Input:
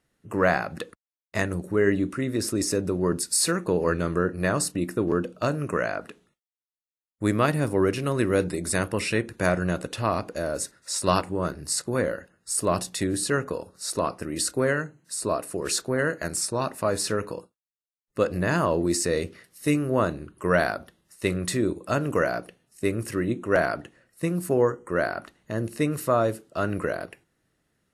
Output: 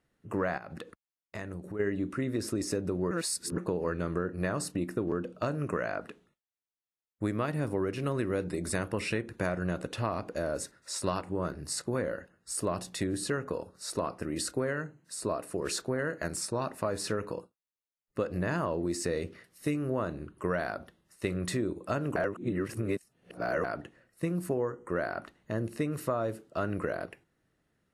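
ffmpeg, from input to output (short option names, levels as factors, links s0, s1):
-filter_complex "[0:a]asplit=3[s0][s1][s2];[s0]afade=t=out:st=0.57:d=0.02[s3];[s1]acompressor=threshold=0.0158:ratio=3:attack=3.2:release=140:knee=1:detection=peak,afade=t=in:st=0.57:d=0.02,afade=t=out:st=1.79:d=0.02[s4];[s2]afade=t=in:st=1.79:d=0.02[s5];[s3][s4][s5]amix=inputs=3:normalize=0,asplit=5[s6][s7][s8][s9][s10];[s6]atrim=end=3.112[s11];[s7]atrim=start=3.108:end=3.582,asetpts=PTS-STARTPTS,areverse[s12];[s8]atrim=start=3.578:end=22.162[s13];[s9]atrim=start=22.158:end=23.642,asetpts=PTS-STARTPTS,areverse[s14];[s10]atrim=start=23.638[s15];[s11][s12]acrossfade=d=0.004:c1=hsin:c2=hsin[s16];[s16][s13]acrossfade=d=0.004:c1=hsin:c2=hsin[s17];[s17][s14]acrossfade=d=0.004:c1=hsin:c2=hsin[s18];[s18][s15]acrossfade=d=0.004:c1=hsin:c2=hsin,highshelf=f=4000:g=-7.5,acompressor=threshold=0.0562:ratio=6,volume=0.794"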